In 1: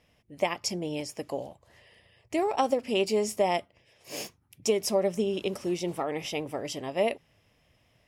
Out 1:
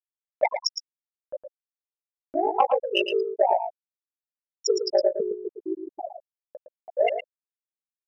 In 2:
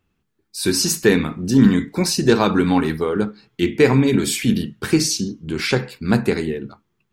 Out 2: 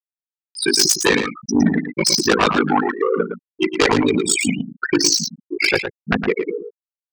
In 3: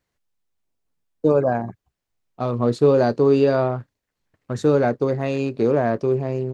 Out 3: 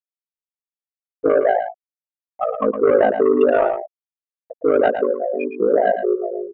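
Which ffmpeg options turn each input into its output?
-filter_complex "[0:a]highpass=f=1100:p=1,bandreject=f=3500:w=24,afftfilt=real='re*gte(hypot(re,im),0.126)':imag='im*gte(hypot(re,im),0.126)':win_size=1024:overlap=0.75,acrossover=split=3500[s0][s1];[s0]acompressor=mode=upward:threshold=0.00501:ratio=2.5[s2];[s1]tremolo=f=12:d=0.68[s3];[s2][s3]amix=inputs=2:normalize=0,aeval=exprs='0.422*sin(PI/2*3.55*val(0)/0.422)':c=same,aeval=exprs='val(0)*sin(2*PI*26*n/s)':c=same,asplit=2[s4][s5];[s5]aecho=0:1:112:0.398[s6];[s4][s6]amix=inputs=2:normalize=0"

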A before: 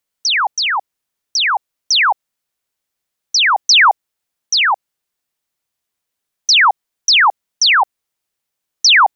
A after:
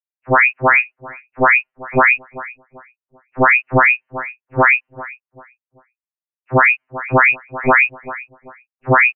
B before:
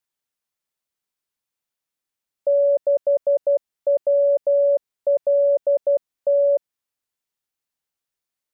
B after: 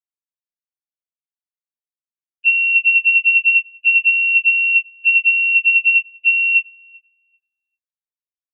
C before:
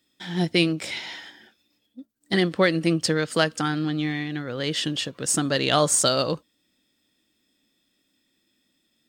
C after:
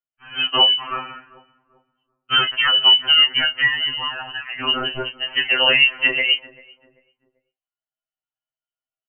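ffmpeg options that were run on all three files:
-filter_complex "[0:a]highpass=320,agate=range=0.0224:threshold=0.0316:ratio=3:detection=peak,asplit=2[s0][s1];[s1]adelay=26,volume=0.316[s2];[s0][s2]amix=inputs=2:normalize=0,lowpass=f=2800:t=q:w=0.5098,lowpass=f=2800:t=q:w=0.6013,lowpass=f=2800:t=q:w=0.9,lowpass=f=2800:t=q:w=2.563,afreqshift=-3300,asplit=2[s3][s4];[s4]adelay=390,lowpass=f=820:p=1,volume=0.112,asplit=2[s5][s6];[s6]adelay=390,lowpass=f=820:p=1,volume=0.4,asplit=2[s7][s8];[s8]adelay=390,lowpass=f=820:p=1,volume=0.4[s9];[s5][s7][s9]amix=inputs=3:normalize=0[s10];[s3][s10]amix=inputs=2:normalize=0,alimiter=level_in=4.73:limit=0.891:release=50:level=0:latency=1,afftfilt=real='re*2.45*eq(mod(b,6),0)':imag='im*2.45*eq(mod(b,6),0)':win_size=2048:overlap=0.75,volume=0.75"

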